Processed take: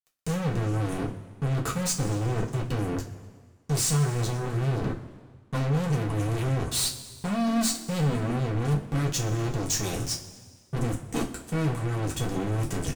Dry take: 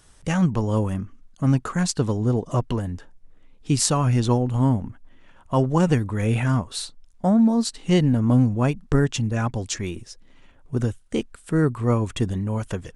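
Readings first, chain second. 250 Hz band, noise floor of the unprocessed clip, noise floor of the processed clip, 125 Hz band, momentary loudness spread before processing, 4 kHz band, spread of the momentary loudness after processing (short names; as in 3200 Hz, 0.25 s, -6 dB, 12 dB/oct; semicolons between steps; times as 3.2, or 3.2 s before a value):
-8.0 dB, -52 dBFS, -55 dBFS, -4.5 dB, 11 LU, -0.5 dB, 8 LU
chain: HPF 42 Hz 24 dB/oct; tone controls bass +14 dB, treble +11 dB; reverse; compressor 12:1, threshold -19 dBFS, peak gain reduction 17 dB; reverse; fuzz box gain 28 dB, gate -36 dBFS; flange 0.42 Hz, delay 8.7 ms, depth 4.1 ms, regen -49%; soft clip -27 dBFS, distortion -9 dB; wow and flutter 28 cents; on a send: frequency-shifting echo 0.122 s, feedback 56%, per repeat +38 Hz, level -23 dB; on the sum: two-slope reverb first 0.23 s, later 1.7 s, from -18 dB, DRR -0.5 dB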